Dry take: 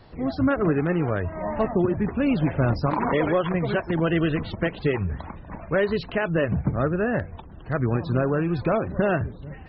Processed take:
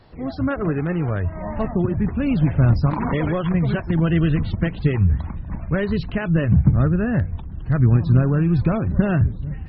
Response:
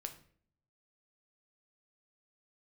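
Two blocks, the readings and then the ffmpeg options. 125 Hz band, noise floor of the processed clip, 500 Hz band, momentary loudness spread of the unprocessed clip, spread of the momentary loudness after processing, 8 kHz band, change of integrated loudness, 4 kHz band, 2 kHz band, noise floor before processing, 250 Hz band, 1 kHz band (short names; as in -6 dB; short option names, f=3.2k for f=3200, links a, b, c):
+9.0 dB, -33 dBFS, -3.0 dB, 7 LU, 9 LU, n/a, +4.0 dB, -1.0 dB, -1.5 dB, -42 dBFS, +4.0 dB, -2.5 dB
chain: -af "asubboost=boost=5:cutoff=210,volume=-1dB"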